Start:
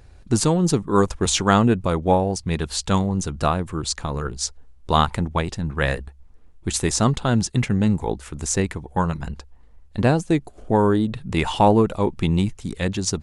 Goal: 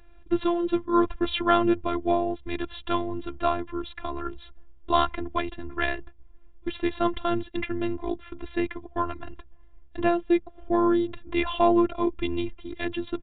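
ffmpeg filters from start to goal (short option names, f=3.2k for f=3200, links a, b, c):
-af "afftfilt=real='hypot(re,im)*cos(PI*b)':imag='0':win_size=512:overlap=0.75,aresample=8000,aresample=44100"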